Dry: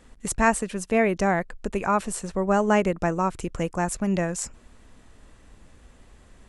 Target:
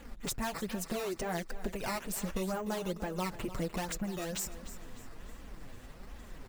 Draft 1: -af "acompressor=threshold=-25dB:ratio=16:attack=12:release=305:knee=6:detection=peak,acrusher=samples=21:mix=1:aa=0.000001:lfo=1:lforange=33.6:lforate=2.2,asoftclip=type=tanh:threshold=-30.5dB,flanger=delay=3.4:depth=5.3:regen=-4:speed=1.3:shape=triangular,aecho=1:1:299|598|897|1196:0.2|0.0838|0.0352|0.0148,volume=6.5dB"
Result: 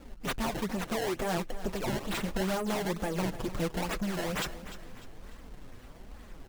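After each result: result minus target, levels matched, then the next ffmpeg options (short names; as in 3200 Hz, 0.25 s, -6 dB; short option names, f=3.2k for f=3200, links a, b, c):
compressor: peak gain reduction -7.5 dB; decimation with a swept rate: distortion +7 dB
-af "acompressor=threshold=-33dB:ratio=16:attack=12:release=305:knee=6:detection=peak,acrusher=samples=21:mix=1:aa=0.000001:lfo=1:lforange=33.6:lforate=2.2,asoftclip=type=tanh:threshold=-30.5dB,flanger=delay=3.4:depth=5.3:regen=-4:speed=1.3:shape=triangular,aecho=1:1:299|598|897|1196:0.2|0.0838|0.0352|0.0148,volume=6.5dB"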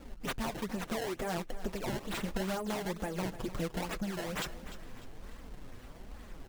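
decimation with a swept rate: distortion +7 dB
-af "acompressor=threshold=-33dB:ratio=16:attack=12:release=305:knee=6:detection=peak,acrusher=samples=8:mix=1:aa=0.000001:lfo=1:lforange=12.8:lforate=2.2,asoftclip=type=tanh:threshold=-30.5dB,flanger=delay=3.4:depth=5.3:regen=-4:speed=1.3:shape=triangular,aecho=1:1:299|598|897|1196:0.2|0.0838|0.0352|0.0148,volume=6.5dB"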